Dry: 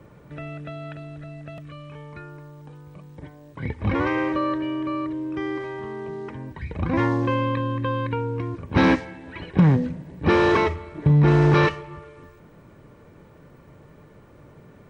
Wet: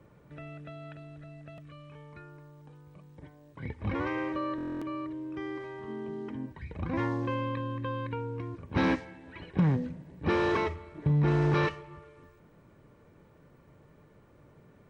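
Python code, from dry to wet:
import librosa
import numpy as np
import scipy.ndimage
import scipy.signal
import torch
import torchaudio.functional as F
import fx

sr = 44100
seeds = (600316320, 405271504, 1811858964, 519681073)

y = fx.small_body(x, sr, hz=(250.0, 3100.0), ring_ms=45, db=14, at=(5.88, 6.46))
y = fx.buffer_glitch(y, sr, at_s=(4.56,), block=1024, repeats=10)
y = F.gain(torch.from_numpy(y), -9.0).numpy()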